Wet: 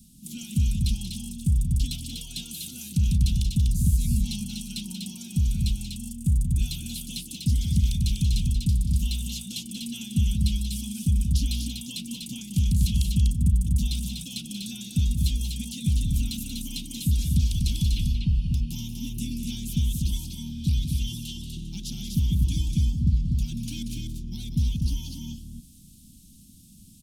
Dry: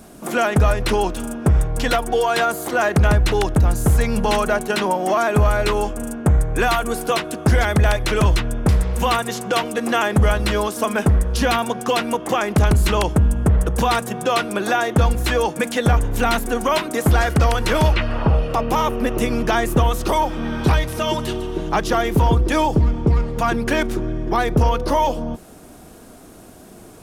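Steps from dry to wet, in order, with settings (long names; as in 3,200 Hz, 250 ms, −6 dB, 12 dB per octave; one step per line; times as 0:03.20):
inverse Chebyshev band-stop filter 390–1,900 Hz, stop band 40 dB
multi-tap delay 184/246 ms −8.5/−4 dB
level −6.5 dB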